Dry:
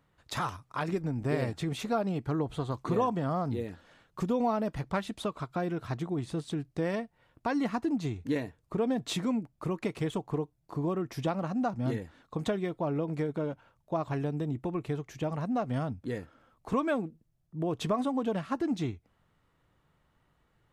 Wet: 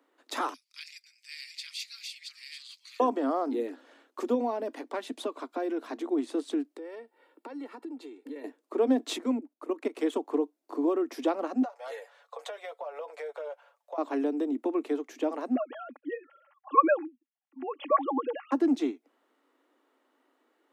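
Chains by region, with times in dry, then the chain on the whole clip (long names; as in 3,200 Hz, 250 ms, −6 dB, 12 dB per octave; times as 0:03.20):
0:00.54–0:03.00: delay that plays each chunk backwards 697 ms, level −3 dB + elliptic high-pass filter 2,200 Hz, stop band 70 dB + parametric band 4,700 Hz +15 dB 0.27 octaves
0:04.34–0:06.04: downward compressor 2 to 1, threshold −32 dBFS + notch filter 1,300 Hz, Q 11
0:06.74–0:08.44: parametric band 6,100 Hz −13 dB 0.21 octaves + comb filter 2.2 ms, depth 53% + downward compressor 8 to 1, threshold −43 dBFS
0:09.16–0:09.99: high-pass filter 47 Hz + parametric band 4,900 Hz −3 dB 1 octave + output level in coarse steps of 15 dB
0:11.62–0:13.98: Chebyshev high-pass filter 490 Hz, order 6 + comb filter 7 ms, depth 59% + downward compressor 8 to 1, threshold −37 dBFS
0:15.55–0:18.52: three sine waves on the formant tracks + high-pass filter 590 Hz + comb filter 3.6 ms, depth 67%
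whole clip: Butterworth high-pass 250 Hz 96 dB per octave; low-shelf EQ 490 Hz +9.5 dB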